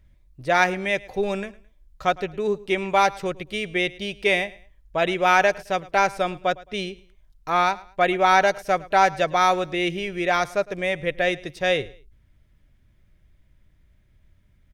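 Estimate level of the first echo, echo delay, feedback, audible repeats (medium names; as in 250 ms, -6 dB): -21.0 dB, 108 ms, 30%, 2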